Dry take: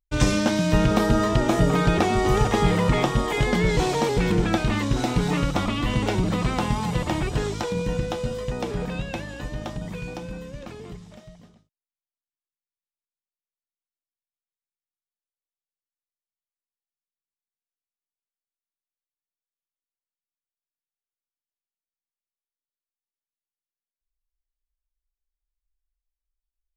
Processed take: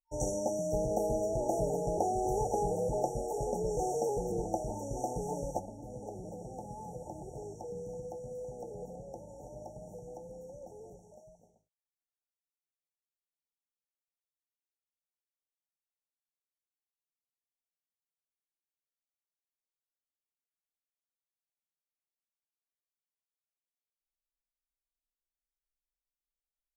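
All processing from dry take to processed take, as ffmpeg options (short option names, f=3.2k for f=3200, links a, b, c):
-filter_complex "[0:a]asettb=1/sr,asplit=3[a][b][c];[a]atrim=end=5.594[d];[b]atrim=start=5.59:end=11.11,asetpts=PTS-STARTPTS,afade=t=in:d=0.004:c=qsin,afade=t=out:st=5.516:d=0.004:c=qsin,acrossover=split=85|290|3400[e][f][g][h];[e]acompressor=threshold=-43dB:ratio=3[i];[f]acompressor=threshold=-29dB:ratio=3[j];[g]acompressor=threshold=-38dB:ratio=3[k];[h]acompressor=threshold=-54dB:ratio=3[l];[i][j][k][l]amix=inputs=4:normalize=0,aecho=1:1:327:0.266,atrim=end_sample=243432[m];[c]atrim=start=11.106[n];[d][m]acrossfade=d=0.004:c1=hsin:c2=qsin[o];[o][n]acrossfade=d=0.004:c1=qsin:c2=hsin,afftfilt=real='re*(1-between(b*sr/4096,910,5500))':imag='im*(1-between(b*sr/4096,910,5500))':win_size=4096:overlap=0.75,lowshelf=f=360:t=q:w=1.5:g=-9,volume=-7.5dB"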